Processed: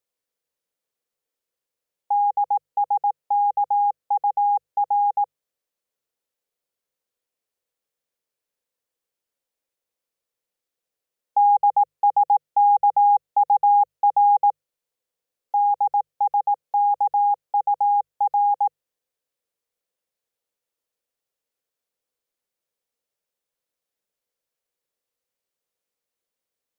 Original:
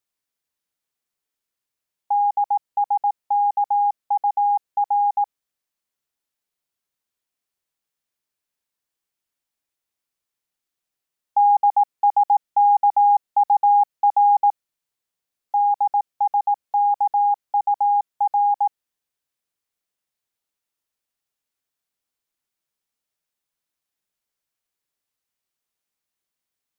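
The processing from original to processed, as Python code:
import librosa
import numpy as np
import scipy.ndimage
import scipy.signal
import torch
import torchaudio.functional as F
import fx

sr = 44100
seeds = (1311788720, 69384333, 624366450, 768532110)

y = fx.peak_eq(x, sr, hz=500.0, db=12.5, octaves=0.53)
y = fx.hum_notches(y, sr, base_hz=50, count=3)
y = F.gain(torch.from_numpy(y), -2.5).numpy()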